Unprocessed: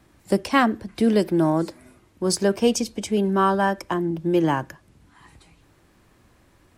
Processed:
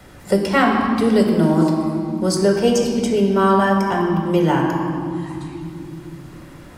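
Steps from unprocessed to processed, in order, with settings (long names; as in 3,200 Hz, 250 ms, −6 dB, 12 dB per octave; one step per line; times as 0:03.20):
convolution reverb RT60 2.1 s, pre-delay 3 ms, DRR 0 dB
multiband upward and downward compressor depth 40%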